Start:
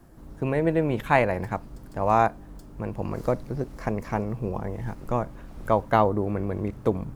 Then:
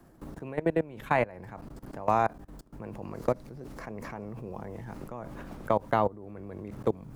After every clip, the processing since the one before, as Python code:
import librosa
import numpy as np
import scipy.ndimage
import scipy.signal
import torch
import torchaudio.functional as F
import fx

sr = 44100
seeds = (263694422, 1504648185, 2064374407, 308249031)

y = fx.level_steps(x, sr, step_db=22)
y = fx.low_shelf(y, sr, hz=82.0, db=-5.0)
y = fx.band_squash(y, sr, depth_pct=40)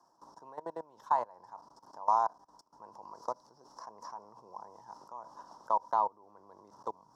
y = fx.double_bandpass(x, sr, hz=2300.0, octaves=2.5)
y = y * 10.0 ** (6.0 / 20.0)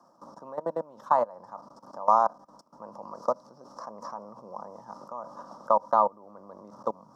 y = fx.small_body(x, sr, hz=(210.0, 550.0, 1200.0), ring_ms=25, db=14)
y = y * 10.0 ** (2.0 / 20.0)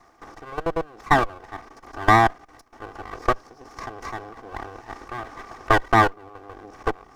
y = fx.lower_of_two(x, sr, delay_ms=2.6)
y = y * 10.0 ** (7.0 / 20.0)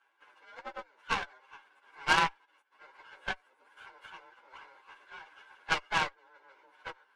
y = fx.partial_stretch(x, sr, pct=119)
y = fx.bandpass_edges(y, sr, low_hz=760.0, high_hz=5300.0)
y = fx.cheby_harmonics(y, sr, harmonics=(3, 5, 6), levels_db=(-12, -32, -22), full_scale_db=-7.0)
y = y * 10.0 ** (-1.5 / 20.0)